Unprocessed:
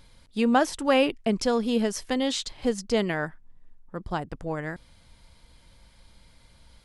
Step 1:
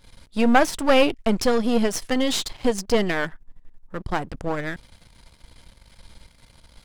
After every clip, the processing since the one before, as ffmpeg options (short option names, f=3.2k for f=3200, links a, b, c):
-af "aeval=exprs='if(lt(val(0),0),0.251*val(0),val(0))':c=same,volume=8.5dB"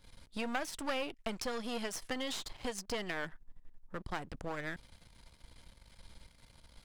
-filter_complex "[0:a]acrossover=split=720|1500[a][b][c];[a]acompressor=threshold=-32dB:ratio=4[d];[b]acompressor=threshold=-35dB:ratio=4[e];[c]acompressor=threshold=-32dB:ratio=4[f];[d][e][f]amix=inputs=3:normalize=0,volume=-8dB"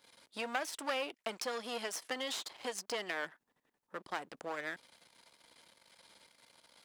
-af "highpass=370,volume=1dB"